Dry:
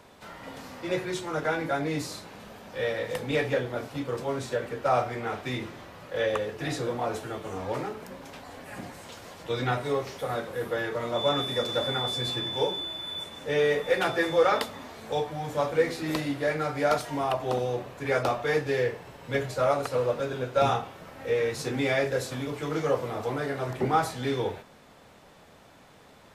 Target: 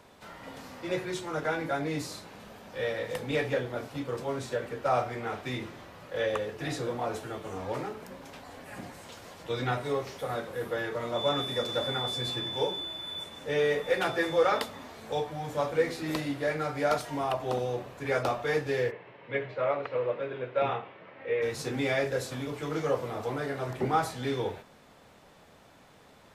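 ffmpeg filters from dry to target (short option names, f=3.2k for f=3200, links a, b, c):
-filter_complex "[0:a]asplit=3[a][b][c];[a]afade=t=out:st=18.9:d=0.02[d];[b]highpass=f=130:w=0.5412,highpass=f=130:w=1.3066,equalizer=f=160:t=q:w=4:g=-9,equalizer=f=250:t=q:w=4:g=-7,equalizer=f=770:t=q:w=4:g=-5,equalizer=f=1.4k:t=q:w=4:g=-4,equalizer=f=2.1k:t=q:w=4:g=4,lowpass=f=3k:w=0.5412,lowpass=f=3k:w=1.3066,afade=t=in:st=18.9:d=0.02,afade=t=out:st=21.41:d=0.02[e];[c]afade=t=in:st=21.41:d=0.02[f];[d][e][f]amix=inputs=3:normalize=0,volume=-2.5dB"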